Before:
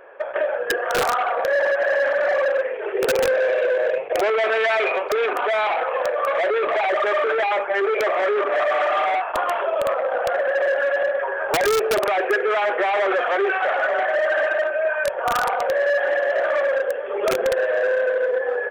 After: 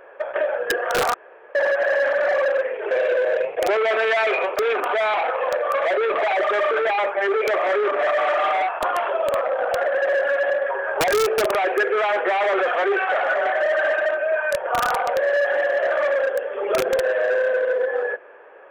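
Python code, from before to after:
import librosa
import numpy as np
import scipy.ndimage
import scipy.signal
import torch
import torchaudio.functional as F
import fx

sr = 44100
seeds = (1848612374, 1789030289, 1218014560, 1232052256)

y = fx.edit(x, sr, fx.room_tone_fill(start_s=1.14, length_s=0.41),
    fx.cut(start_s=2.91, length_s=0.53), tone=tone)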